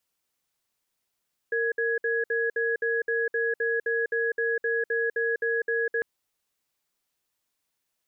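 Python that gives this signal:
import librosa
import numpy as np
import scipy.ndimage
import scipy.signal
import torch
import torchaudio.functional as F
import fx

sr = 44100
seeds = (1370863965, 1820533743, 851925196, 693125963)

y = fx.cadence(sr, length_s=4.5, low_hz=461.0, high_hz=1670.0, on_s=0.2, off_s=0.06, level_db=-26.0)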